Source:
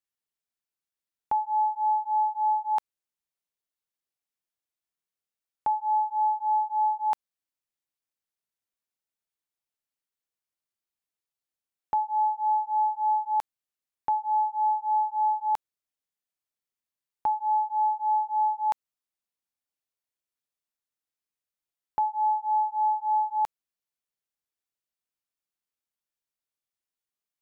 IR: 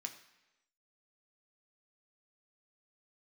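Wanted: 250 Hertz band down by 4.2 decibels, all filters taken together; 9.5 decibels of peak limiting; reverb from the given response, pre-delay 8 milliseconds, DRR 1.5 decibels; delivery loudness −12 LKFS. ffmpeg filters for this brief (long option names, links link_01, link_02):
-filter_complex "[0:a]equalizer=frequency=250:width_type=o:gain=-6,alimiter=level_in=5dB:limit=-24dB:level=0:latency=1,volume=-5dB,asplit=2[link_01][link_02];[1:a]atrim=start_sample=2205,adelay=8[link_03];[link_02][link_03]afir=irnorm=-1:irlink=0,volume=1dB[link_04];[link_01][link_04]amix=inputs=2:normalize=0,volume=19dB"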